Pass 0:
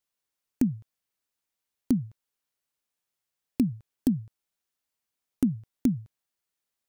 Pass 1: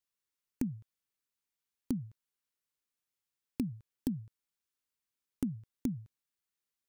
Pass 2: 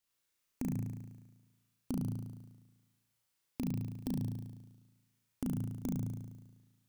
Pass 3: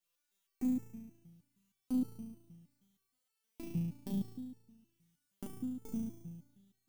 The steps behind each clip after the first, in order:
compressor 3:1, threshold -26 dBFS, peak gain reduction 6 dB; bell 690 Hz -9.5 dB 0.44 oct; gain -5 dB
compressor, threshold -35 dBFS, peak gain reduction 7 dB; limiter -25.5 dBFS, peak gain reduction 5 dB; flutter echo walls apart 6.1 m, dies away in 1.2 s; gain +4 dB
stepped resonator 6.4 Hz 170–440 Hz; gain +11 dB

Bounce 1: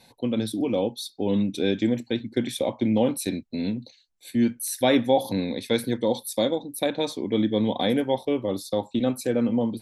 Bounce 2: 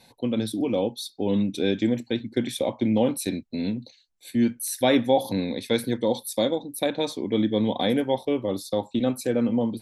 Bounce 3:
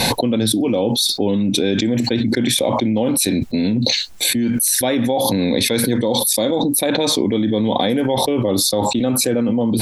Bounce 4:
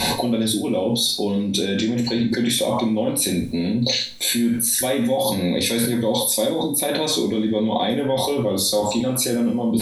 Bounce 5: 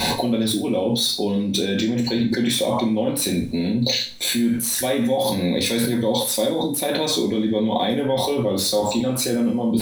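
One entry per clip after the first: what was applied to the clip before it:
nothing audible
fast leveller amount 100%; gain -1 dB
reverb, pre-delay 3 ms, DRR 0.5 dB; gain -6 dB
median filter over 3 samples

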